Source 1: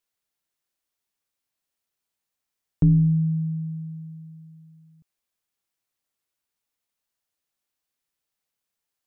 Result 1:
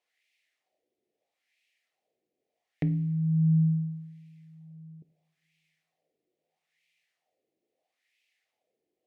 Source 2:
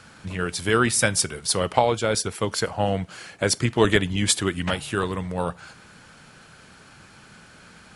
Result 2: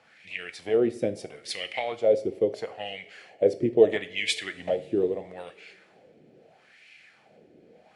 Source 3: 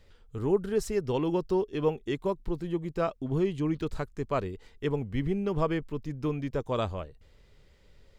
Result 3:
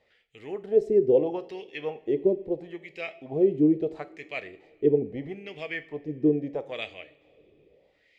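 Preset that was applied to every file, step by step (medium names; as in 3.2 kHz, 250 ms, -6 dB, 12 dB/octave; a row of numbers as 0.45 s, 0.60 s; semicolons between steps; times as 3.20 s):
high-order bell 1.2 kHz -16 dB 1 oct; wah-wah 0.76 Hz 350–2400 Hz, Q 3; two-slope reverb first 0.44 s, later 3 s, from -22 dB, DRR 10.5 dB; normalise loudness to -27 LUFS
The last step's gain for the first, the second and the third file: +20.5 dB, +6.0 dB, +12.5 dB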